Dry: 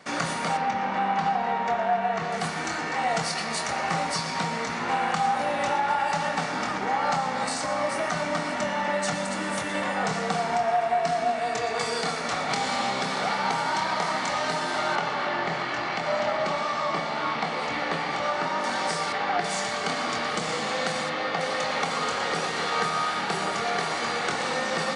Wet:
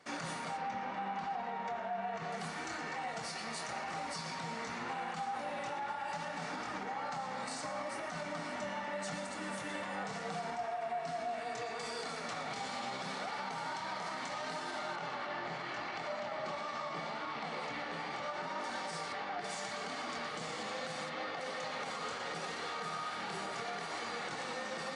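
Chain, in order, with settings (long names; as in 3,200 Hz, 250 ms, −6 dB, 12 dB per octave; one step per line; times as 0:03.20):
brickwall limiter −20.5 dBFS, peak gain reduction 8.5 dB
flanger 0.75 Hz, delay 2.2 ms, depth 8.2 ms, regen −49%
level −6.5 dB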